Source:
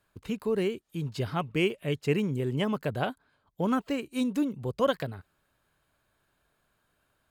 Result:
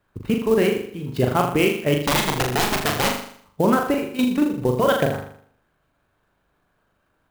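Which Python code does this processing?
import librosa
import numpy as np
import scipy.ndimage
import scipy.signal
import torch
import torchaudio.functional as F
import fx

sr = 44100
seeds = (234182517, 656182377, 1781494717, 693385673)

y = fx.high_shelf(x, sr, hz=2700.0, db=-6.0)
y = fx.hpss(y, sr, part='percussive', gain_db=9)
y = fx.bass_treble(y, sr, bass_db=1, treble_db=-6)
y = fx.level_steps(y, sr, step_db=13)
y = fx.overflow_wrap(y, sr, gain_db=23.0, at=(1.94, 3.07), fade=0.02)
y = fx.room_flutter(y, sr, wall_m=6.9, rt60_s=0.59)
y = fx.clock_jitter(y, sr, seeds[0], jitter_ms=0.021)
y = y * 10.0 ** (8.0 / 20.0)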